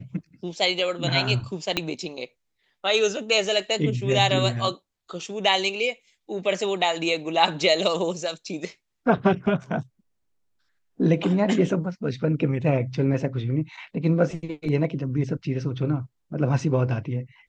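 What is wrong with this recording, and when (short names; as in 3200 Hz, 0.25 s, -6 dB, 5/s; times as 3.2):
1.77 pop -9 dBFS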